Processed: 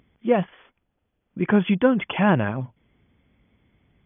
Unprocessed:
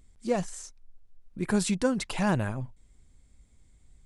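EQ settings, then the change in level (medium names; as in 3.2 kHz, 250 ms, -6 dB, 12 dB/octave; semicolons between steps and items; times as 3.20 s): high-pass 130 Hz 12 dB/octave; brick-wall FIR low-pass 3.5 kHz; +8.0 dB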